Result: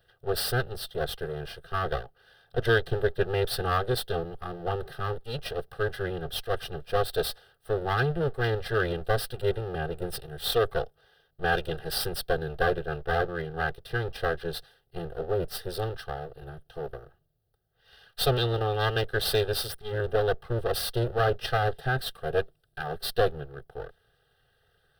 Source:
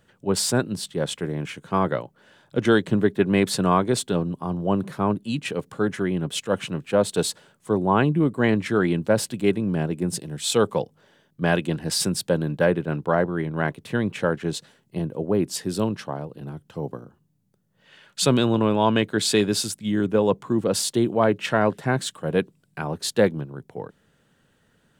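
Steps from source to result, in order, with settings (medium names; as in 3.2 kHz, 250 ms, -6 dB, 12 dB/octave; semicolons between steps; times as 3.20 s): comb filter that takes the minimum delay 2.5 ms; static phaser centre 1.5 kHz, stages 8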